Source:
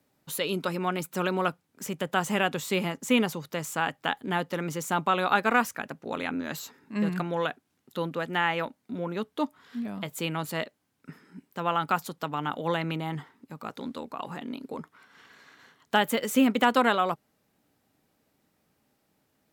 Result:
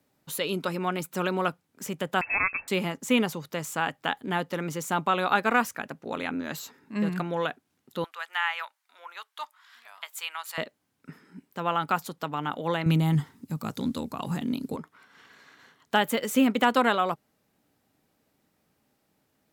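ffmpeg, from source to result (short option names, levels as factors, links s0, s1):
-filter_complex "[0:a]asettb=1/sr,asplit=3[s0][s1][s2];[s0]atrim=end=2.214[s3];[s1]atrim=start=2.21:end=2.68,asetpts=PTS-STARTPTS,afade=t=in:d=0.004:c=qsin,afade=t=out:st=0.466:d=0.004:c=qsin,lowpass=f=2400:t=q:w=0.5098,lowpass=f=2400:t=q:w=0.6013,lowpass=f=2400:t=q:w=0.9,lowpass=f=2400:t=q:w=2.563,afreqshift=-2800[s4];[s2]atrim=start=2.676[s5];[s3][s4]acrossfade=d=0.004:c1=hsin:c2=qsin[s6];[s6][s5]acrossfade=d=0.004:c1=qsin:c2=hsin,asettb=1/sr,asplit=3[s7][s8][s9];[s7]atrim=end=8.044[s10];[s8]atrim=start=8.04:end=10.58,asetpts=PTS-STARTPTS,afade=t=in:d=0.004:c=qsin,afade=t=out:st=2.536:d=0.004:c=qsin,highpass=f=950:w=0.5412,highpass=f=950:w=1.3066[s11];[s9]atrim=start=10.576[s12];[s10][s11]acrossfade=d=0.004:c1=hsin:c2=qsin[s13];[s13][s12]acrossfade=d=0.004:c1=qsin:c2=hsin,asettb=1/sr,asplit=3[s14][s15][s16];[s14]atrim=end=12.864[s17];[s15]atrim=start=12.86:end=14.76,asetpts=PTS-STARTPTS,afade=t=in:d=0.004:c=qsin,afade=t=out:st=1.896:d=0.004:c=qsin,bass=f=250:g=15,treble=f=4000:g=12[s18];[s16]atrim=start=14.756[s19];[s17][s18]acrossfade=d=0.004:c1=hsin:c2=qsin[s20];[s20][s19]acrossfade=d=0.004:c1=qsin:c2=hsin"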